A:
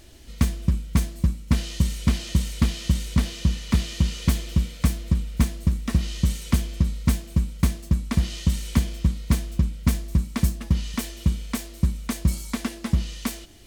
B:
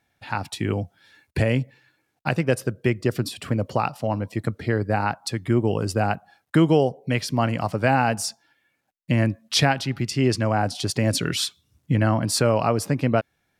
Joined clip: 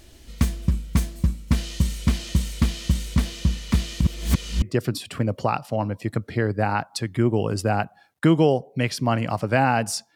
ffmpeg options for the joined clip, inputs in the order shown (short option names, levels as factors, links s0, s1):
-filter_complex "[0:a]apad=whole_dur=10.15,atrim=end=10.15,asplit=2[s0][s1];[s0]atrim=end=4.012[s2];[s1]atrim=start=4.008:end=4.622,asetpts=PTS-STARTPTS,areverse[s3];[1:a]atrim=start=2.928:end=8.46[s4];[s2][s3]acrossfade=d=0.004:c1=hsin:c2=hsin[s5];[s5][s4]acrossfade=d=0.004:c1=hsin:c2=hsin"